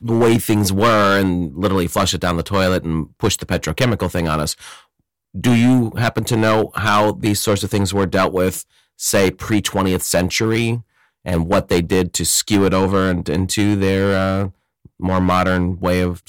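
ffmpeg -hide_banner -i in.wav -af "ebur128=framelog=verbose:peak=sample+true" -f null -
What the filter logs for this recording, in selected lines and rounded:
Integrated loudness:
  I:         -17.3 LUFS
  Threshold: -27.6 LUFS
Loudness range:
  LRA:         2.3 LU
  Threshold: -37.9 LUFS
  LRA low:   -19.0 LUFS
  LRA high:  -16.7 LUFS
Sample peak:
  Peak:       -8.8 dBFS
True peak:
  Peak:       -6.8 dBFS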